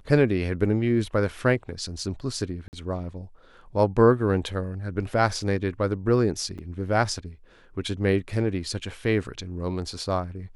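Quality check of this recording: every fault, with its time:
0:02.68–0:02.73: drop-out 49 ms
0:06.58–0:06.59: drop-out 7.2 ms

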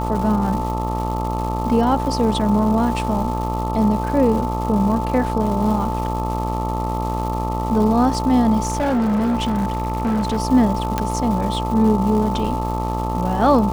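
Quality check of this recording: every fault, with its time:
mains buzz 60 Hz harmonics 22 −24 dBFS
surface crackle 420 per second −28 dBFS
whistle 880 Hz −25 dBFS
0:08.63–0:10.38: clipping −16 dBFS
0:10.98: click −6 dBFS

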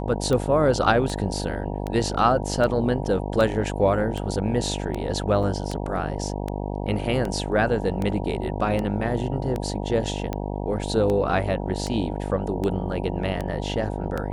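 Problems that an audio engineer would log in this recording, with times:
mains buzz 50 Hz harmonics 19 −29 dBFS
scratch tick 78 rpm −15 dBFS
0:05.43: drop-out 4.8 ms

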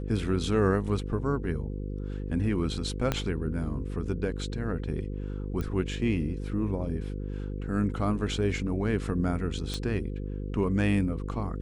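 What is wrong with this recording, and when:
mains buzz 50 Hz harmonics 10 −34 dBFS
0:03.12: click −12 dBFS
0:05.61: click −21 dBFS
0:09.74: click −19 dBFS

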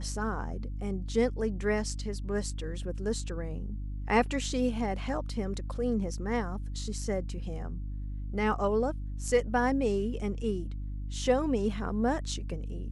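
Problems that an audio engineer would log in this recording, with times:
mains hum 50 Hz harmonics 6 −36 dBFS

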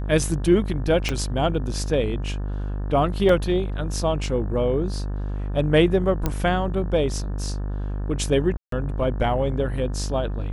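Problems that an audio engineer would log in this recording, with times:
mains buzz 50 Hz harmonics 36 −27 dBFS
0:01.09: click −10 dBFS
0:03.29: drop-out 2.7 ms
0:06.26: click −9 dBFS
0:08.57–0:08.72: drop-out 153 ms

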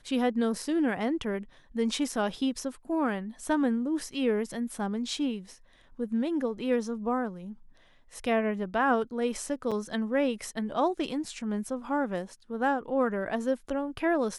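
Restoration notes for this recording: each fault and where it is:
0:09.71–0:09.72: drop-out 6 ms

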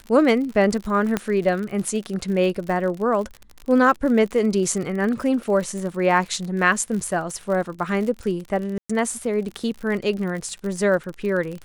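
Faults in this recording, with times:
surface crackle 56 per second −29 dBFS
0:01.17: click −8 dBFS
0:08.78–0:08.89: drop-out 115 ms

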